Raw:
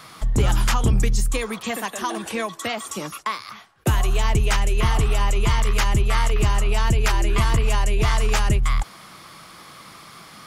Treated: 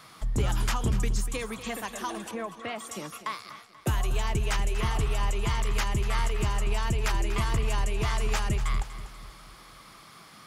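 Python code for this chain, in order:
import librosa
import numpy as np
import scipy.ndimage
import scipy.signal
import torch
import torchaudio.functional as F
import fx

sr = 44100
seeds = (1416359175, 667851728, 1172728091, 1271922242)

y = fx.lowpass(x, sr, hz=fx.line((2.3, 1300.0), (2.77, 3200.0)), slope=12, at=(2.3, 2.77), fade=0.02)
y = fx.echo_feedback(y, sr, ms=242, feedback_pct=48, wet_db=-13.5)
y = F.gain(torch.from_numpy(y), -7.5).numpy()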